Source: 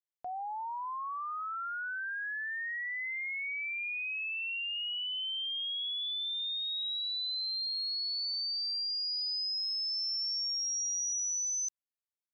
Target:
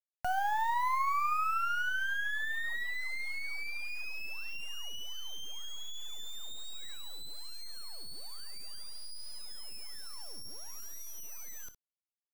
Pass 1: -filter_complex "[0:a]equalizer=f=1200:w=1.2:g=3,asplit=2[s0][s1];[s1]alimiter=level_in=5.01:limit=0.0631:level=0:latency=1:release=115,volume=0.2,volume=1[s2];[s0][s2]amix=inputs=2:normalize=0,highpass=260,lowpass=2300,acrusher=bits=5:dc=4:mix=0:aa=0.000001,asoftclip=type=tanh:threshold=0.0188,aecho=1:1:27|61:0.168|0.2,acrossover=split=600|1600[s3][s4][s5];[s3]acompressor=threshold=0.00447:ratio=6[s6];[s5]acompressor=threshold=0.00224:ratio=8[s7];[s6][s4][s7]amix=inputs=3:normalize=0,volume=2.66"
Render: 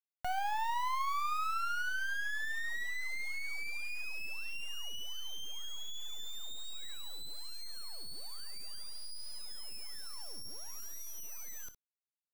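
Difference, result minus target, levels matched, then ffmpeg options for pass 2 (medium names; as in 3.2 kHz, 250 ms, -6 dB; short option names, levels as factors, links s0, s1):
saturation: distortion +18 dB
-filter_complex "[0:a]equalizer=f=1200:w=1.2:g=3,asplit=2[s0][s1];[s1]alimiter=level_in=5.01:limit=0.0631:level=0:latency=1:release=115,volume=0.2,volume=1[s2];[s0][s2]amix=inputs=2:normalize=0,highpass=260,lowpass=2300,acrusher=bits=5:dc=4:mix=0:aa=0.000001,asoftclip=type=tanh:threshold=0.0708,aecho=1:1:27|61:0.168|0.2,acrossover=split=600|1600[s3][s4][s5];[s3]acompressor=threshold=0.00447:ratio=6[s6];[s5]acompressor=threshold=0.00224:ratio=8[s7];[s6][s4][s7]amix=inputs=3:normalize=0,volume=2.66"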